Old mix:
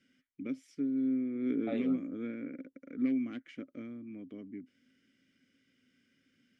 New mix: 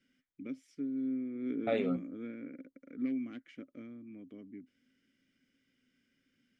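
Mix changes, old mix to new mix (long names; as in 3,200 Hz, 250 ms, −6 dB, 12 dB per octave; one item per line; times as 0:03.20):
first voice −4.0 dB
second voice +7.5 dB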